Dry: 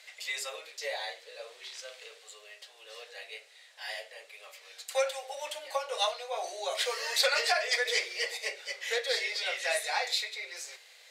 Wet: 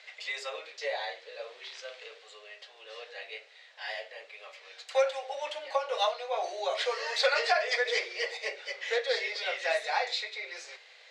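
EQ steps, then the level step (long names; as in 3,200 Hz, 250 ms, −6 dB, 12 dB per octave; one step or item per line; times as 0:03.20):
dynamic equaliser 2,600 Hz, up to −3 dB, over −38 dBFS, Q 0.8
high-frequency loss of the air 150 metres
+4.0 dB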